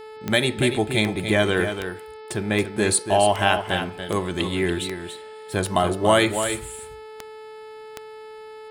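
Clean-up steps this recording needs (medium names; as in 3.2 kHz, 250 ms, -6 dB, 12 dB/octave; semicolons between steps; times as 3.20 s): de-click; de-hum 434.9 Hz, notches 12; inverse comb 286 ms -8.5 dB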